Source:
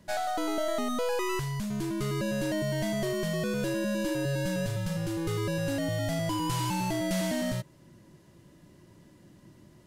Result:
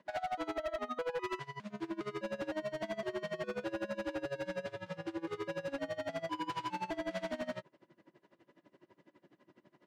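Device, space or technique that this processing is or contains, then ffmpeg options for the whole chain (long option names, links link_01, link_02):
helicopter radio: -filter_complex "[0:a]asettb=1/sr,asplit=3[link_01][link_02][link_03];[link_01]atrim=end=0.544[link_04];[link_02]atrim=start=0.54:end=1.24,asetpts=PTS-STARTPTS,afade=type=in:duration=0.004:curve=qsin,afade=type=out:start_time=0.696:duration=0.004:curve=qsin,bass=frequency=250:gain=-6,treble=frequency=4000:gain=-7[link_05];[link_03]atrim=start=1.236[link_06];[link_04][link_05]acrossfade=duration=0.004:curve1=hsin:curve2=qsin[link_07];[link_07][link_06]acrossfade=duration=0.004:curve1=qsin:curve2=hsin,highpass=350,lowpass=2600,aeval=exprs='val(0)*pow(10,-22*(0.5-0.5*cos(2*PI*12*n/s))/20)':channel_layout=same,asoftclip=type=hard:threshold=-34dB,volume=2dB"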